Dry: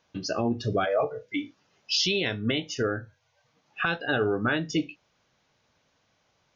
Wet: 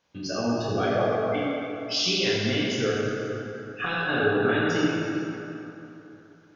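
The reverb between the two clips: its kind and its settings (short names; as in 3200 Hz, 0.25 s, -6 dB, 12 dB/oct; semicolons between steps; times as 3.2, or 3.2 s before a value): plate-style reverb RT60 3.2 s, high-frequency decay 0.6×, DRR -7 dB; gain -5 dB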